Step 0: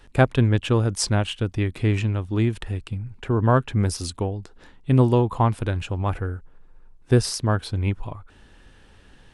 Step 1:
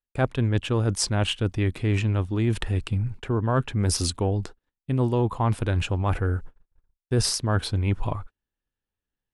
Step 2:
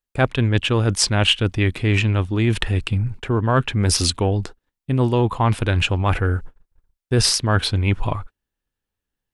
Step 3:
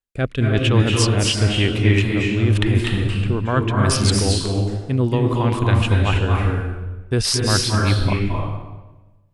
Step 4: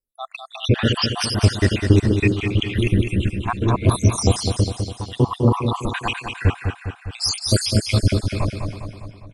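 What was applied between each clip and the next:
noise gate −41 dBFS, range −45 dB; reversed playback; downward compressor 5 to 1, threshold −28 dBFS, peak gain reduction 15.5 dB; reversed playback; level +7 dB
dynamic equaliser 2,700 Hz, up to +7 dB, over −43 dBFS, Q 0.72; level +4.5 dB
rotating-speaker cabinet horn 1 Hz, later 5 Hz, at 0:03.22; convolution reverb RT60 1.1 s, pre-delay 218 ms, DRR −1 dB
time-frequency cells dropped at random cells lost 77%; on a send: repeating echo 203 ms, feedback 56%, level −6.5 dB; on the sum: level +4 dB

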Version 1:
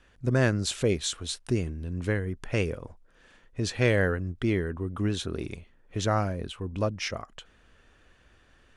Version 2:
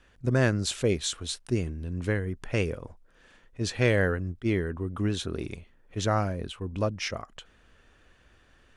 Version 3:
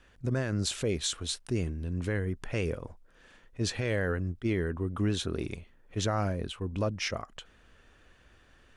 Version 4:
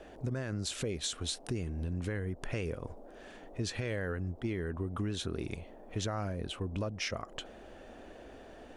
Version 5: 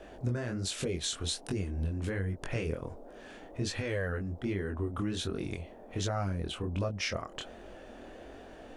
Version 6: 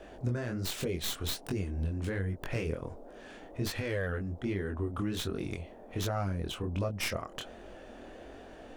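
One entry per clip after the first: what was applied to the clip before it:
level that may rise only so fast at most 550 dB per second
brickwall limiter −20 dBFS, peak gain reduction 11.5 dB
noise in a band 210–740 Hz −56 dBFS; downward compressor 4 to 1, threshold −37 dBFS, peak gain reduction 11 dB; level +3.5 dB
chorus effect 1.3 Hz, delay 20 ms, depth 5.7 ms; level +5 dB
stylus tracing distortion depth 0.11 ms

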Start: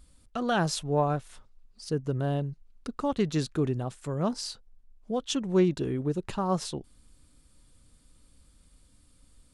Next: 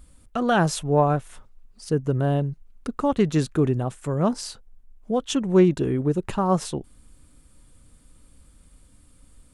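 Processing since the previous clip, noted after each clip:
parametric band 4,500 Hz −7 dB 1 octave
level +6.5 dB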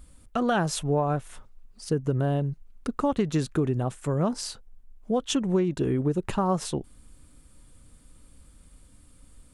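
downward compressor 12 to 1, threshold −20 dBFS, peak gain reduction 9.5 dB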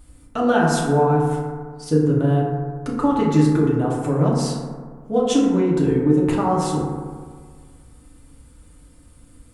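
feedback delay network reverb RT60 1.7 s, low-frequency decay 1×, high-frequency decay 0.3×, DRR −5 dB

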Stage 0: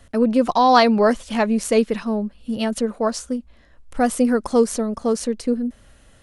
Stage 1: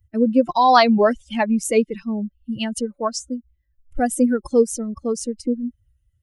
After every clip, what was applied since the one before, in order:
spectral dynamics exaggerated over time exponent 2
in parallel at −1.5 dB: downward compressor, threshold −28 dBFS, peak gain reduction 15.5 dB
on the sum: level +1.5 dB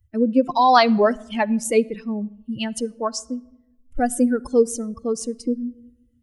rectangular room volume 3,400 cubic metres, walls furnished, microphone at 0.36 metres
level −1 dB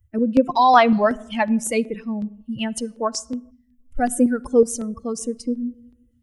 auto-filter notch square 2.7 Hz 370–4,500 Hz
gain on a spectral selection 0:03.51–0:03.80, 270–1,600 Hz −21 dB
level +1.5 dB

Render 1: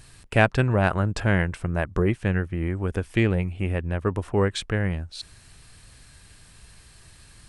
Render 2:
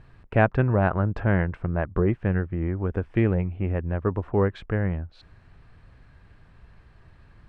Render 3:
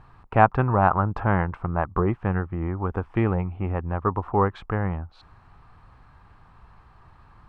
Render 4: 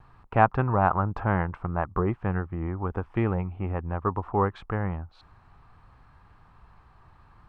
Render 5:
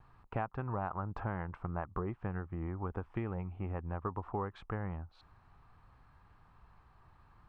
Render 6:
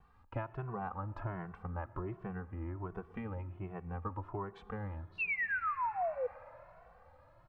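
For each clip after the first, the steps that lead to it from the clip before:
low-pass filter 1,500 Hz 12 dB per octave
flat-topped bell 1,000 Hz +11 dB 1 octave; level −1 dB
pitch vibrato 0.68 Hz 16 cents; level −3 dB
downward compressor 12 to 1, threshold −25 dBFS, peak gain reduction 13 dB; level −7 dB
sound drawn into the spectrogram fall, 0:05.18–0:06.27, 480–2,800 Hz −32 dBFS; convolution reverb RT60 3.9 s, pre-delay 38 ms, DRR 16.5 dB; barber-pole flanger 2.2 ms +1.3 Hz

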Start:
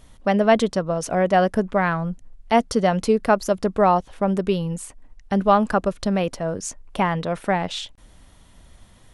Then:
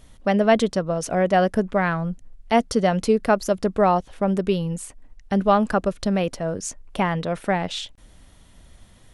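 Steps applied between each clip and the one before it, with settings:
parametric band 990 Hz −3 dB 0.77 octaves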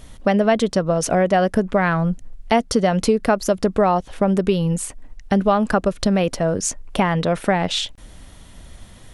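downward compressor 3 to 1, threshold −23 dBFS, peak gain reduction 9.5 dB
level +8 dB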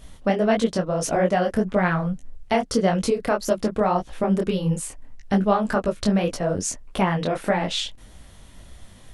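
micro pitch shift up and down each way 59 cents

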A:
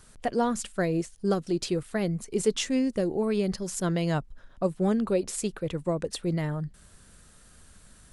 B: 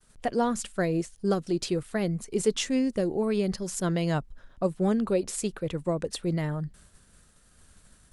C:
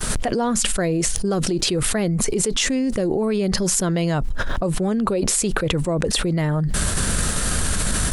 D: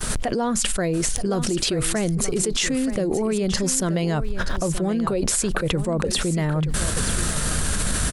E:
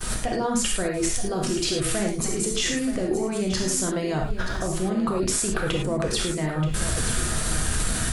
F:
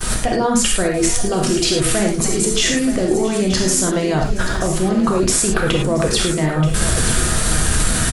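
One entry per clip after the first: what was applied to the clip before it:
downward expander −48 dBFS
envelope flattener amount 100%; level −1.5 dB
single-tap delay 928 ms −11.5 dB; level −2 dB
reverb whose tail is shaped and stops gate 130 ms flat, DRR −1 dB; level −5 dB
repeating echo 678 ms, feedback 54%, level −18 dB; level +8 dB

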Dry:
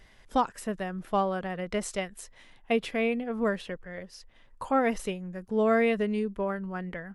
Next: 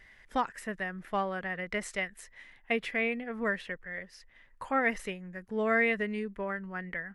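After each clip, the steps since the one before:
parametric band 1,900 Hz +13 dB 0.75 octaves
level −6 dB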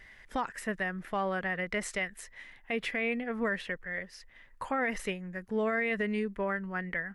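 brickwall limiter −25.5 dBFS, peak gain reduction 9.5 dB
level +3 dB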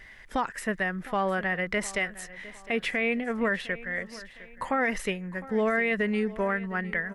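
repeating echo 708 ms, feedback 39%, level −18 dB
level +4.5 dB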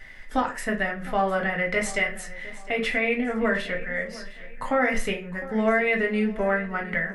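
convolution reverb RT60 0.40 s, pre-delay 4 ms, DRR 0.5 dB

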